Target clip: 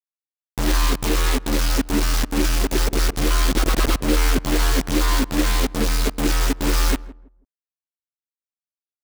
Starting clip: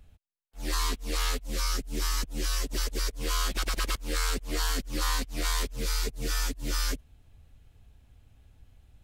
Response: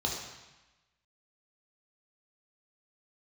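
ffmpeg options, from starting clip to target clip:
-filter_complex "[0:a]lowpass=f=3.5k:p=1,equalizer=f=280:w=1.3:g=8,asplit=2[a][b];[b]acompressor=threshold=-38dB:ratio=12,volume=-1dB[c];[a][c]amix=inputs=2:normalize=0,aphaser=in_gain=1:out_gain=1:delay=3.9:decay=0.31:speed=0.26:type=sinusoidal,acrossover=split=220|940[d][e][f];[f]asoftclip=type=tanh:threshold=-34.5dB[g];[d][e][g]amix=inputs=3:normalize=0,acrusher=bits=4:mix=0:aa=0.000001,asplit=2[h][i];[i]adelay=163,lowpass=f=810:p=1,volume=-17dB,asplit=2[j][k];[k]adelay=163,lowpass=f=810:p=1,volume=0.27,asplit=2[l][m];[m]adelay=163,lowpass=f=810:p=1,volume=0.27[n];[h][j][l][n]amix=inputs=4:normalize=0,volume=7dB"

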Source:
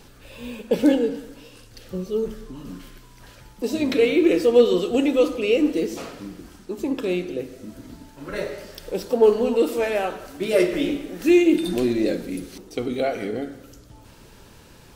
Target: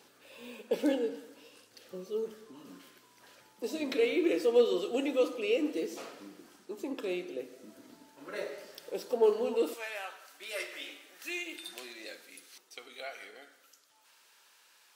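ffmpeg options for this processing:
-af "asetnsamples=n=441:p=0,asendcmd='9.74 highpass f 1200',highpass=330,volume=-8.5dB"

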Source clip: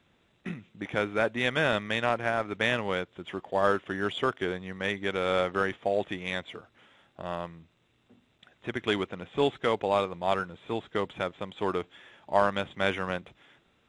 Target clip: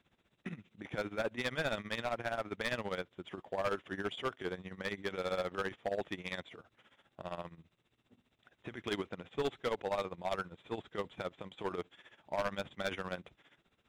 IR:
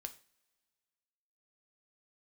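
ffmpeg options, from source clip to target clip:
-af "tremolo=f=15:d=0.81,asoftclip=type=hard:threshold=-24.5dB,volume=-3.5dB"

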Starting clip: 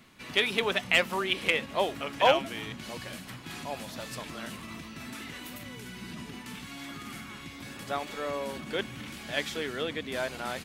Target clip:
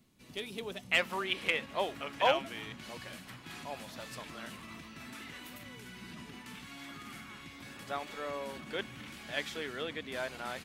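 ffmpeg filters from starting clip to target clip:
-af "asetnsamples=n=441:p=0,asendcmd='0.92 equalizer g 3',equalizer=f=1.6k:t=o:w=2.7:g=-12.5,volume=-7dB"

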